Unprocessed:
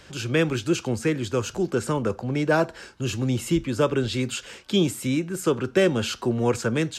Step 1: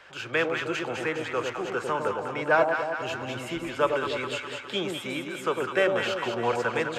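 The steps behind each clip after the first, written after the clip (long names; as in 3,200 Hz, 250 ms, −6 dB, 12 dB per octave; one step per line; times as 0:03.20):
three-way crossover with the lows and the highs turned down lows −20 dB, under 560 Hz, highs −16 dB, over 2,800 Hz
delay that swaps between a low-pass and a high-pass 102 ms, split 880 Hz, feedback 76%, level −3 dB
level +3 dB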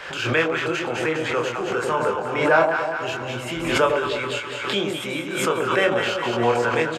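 double-tracking delay 25 ms −3 dB
background raised ahead of every attack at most 55 dB per second
level +3 dB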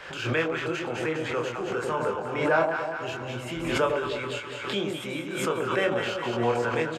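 low-shelf EQ 400 Hz +4.5 dB
level −7 dB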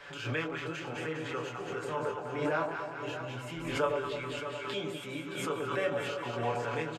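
comb filter 7 ms
single-tap delay 622 ms −10.5 dB
level −8.5 dB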